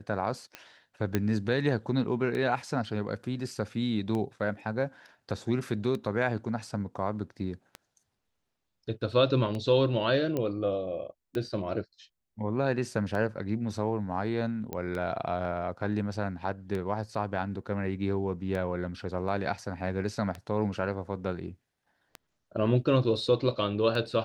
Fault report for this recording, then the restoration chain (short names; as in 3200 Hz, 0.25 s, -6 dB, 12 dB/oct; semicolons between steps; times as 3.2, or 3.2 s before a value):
tick 33 1/3 rpm -22 dBFS
1.15 pop -13 dBFS
10.37 pop -18 dBFS
14.73 pop -20 dBFS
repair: de-click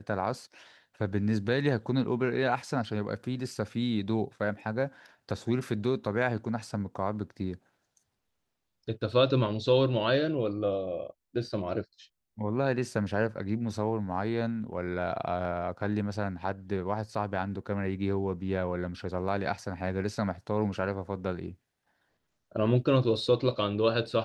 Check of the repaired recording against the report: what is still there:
14.73 pop